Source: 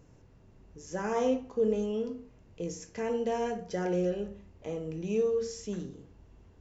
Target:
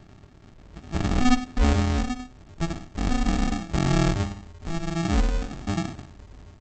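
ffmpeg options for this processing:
ffmpeg -i in.wav -af "lowshelf=frequency=71:gain=2.5,aresample=16000,acrusher=samples=32:mix=1:aa=0.000001,aresample=44100,aecho=1:1:12|59:0.211|0.178,volume=8.5dB" -ar 48000 -c:a libopus -b:a 24k out.opus

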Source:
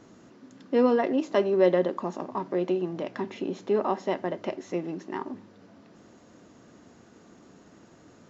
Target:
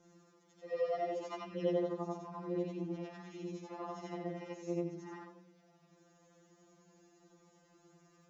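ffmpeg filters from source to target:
ffmpeg -i in.wav -af "afftfilt=real='re':imag='-im':win_size=8192:overlap=0.75,aexciter=amount=2:drive=1.4:freq=5500,afftfilt=real='re*2.83*eq(mod(b,8),0)':imag='im*2.83*eq(mod(b,8),0)':win_size=2048:overlap=0.75,volume=-5dB" out.wav

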